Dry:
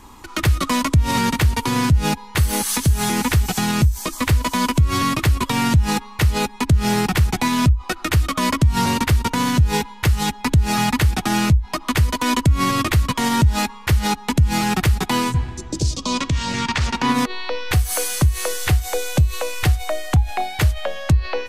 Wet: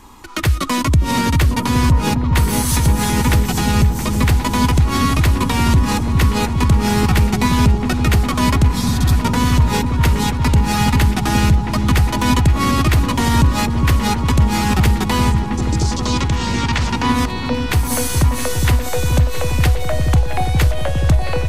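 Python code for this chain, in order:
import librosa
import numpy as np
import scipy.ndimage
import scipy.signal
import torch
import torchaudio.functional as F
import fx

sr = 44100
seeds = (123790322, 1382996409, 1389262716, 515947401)

y = fx.echo_opening(x, sr, ms=408, hz=400, octaves=1, feedback_pct=70, wet_db=-3)
y = fx.spec_repair(y, sr, seeds[0], start_s=8.72, length_s=0.38, low_hz=250.0, high_hz=3200.0, source='both')
y = F.gain(torch.from_numpy(y), 1.0).numpy()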